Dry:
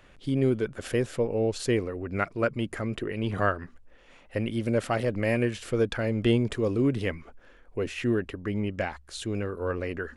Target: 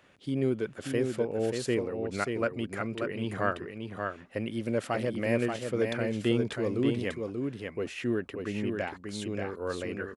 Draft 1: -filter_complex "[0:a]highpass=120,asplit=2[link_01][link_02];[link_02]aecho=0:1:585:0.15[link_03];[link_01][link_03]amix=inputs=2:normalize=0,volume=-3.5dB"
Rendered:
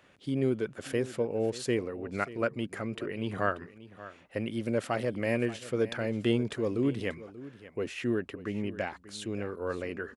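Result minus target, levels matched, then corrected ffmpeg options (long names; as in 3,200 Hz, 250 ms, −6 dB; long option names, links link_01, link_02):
echo-to-direct −11.5 dB
-filter_complex "[0:a]highpass=120,asplit=2[link_01][link_02];[link_02]aecho=0:1:585:0.562[link_03];[link_01][link_03]amix=inputs=2:normalize=0,volume=-3.5dB"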